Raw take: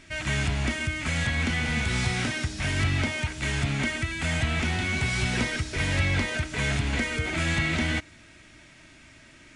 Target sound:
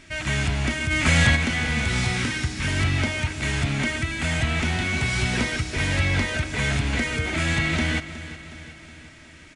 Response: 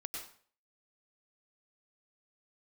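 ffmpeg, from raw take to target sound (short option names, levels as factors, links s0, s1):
-filter_complex "[0:a]asplit=3[s0][s1][s2];[s0]afade=t=out:st=0.9:d=0.02[s3];[s1]acontrast=80,afade=t=in:st=0.9:d=0.02,afade=t=out:st=1.35:d=0.02[s4];[s2]afade=t=in:st=1.35:d=0.02[s5];[s3][s4][s5]amix=inputs=3:normalize=0,asettb=1/sr,asplit=3[s6][s7][s8];[s6]atrim=end=2.174[s9];[s7]atrim=start=2.17:end=2.68,asetpts=PTS-STARTPTS,afade=t=in:d=0.004:c=qsin,afade=t=out:st=0.506:d=0.004:c=qsin,asuperstop=centerf=680:order=4:qfactor=2.5[s10];[s8]atrim=start=2.676[s11];[s9][s10]acrossfade=d=0.004:c1=hsin:c2=qsin[s12];[s12][s11]acrossfade=d=0.004:c1=qsin:c2=hsin,asplit=2[s13][s14];[s14]aecho=0:1:366|732|1098|1464|1830|2196:0.188|0.109|0.0634|0.0368|0.0213|0.0124[s15];[s13][s15]amix=inputs=2:normalize=0,volume=1.33"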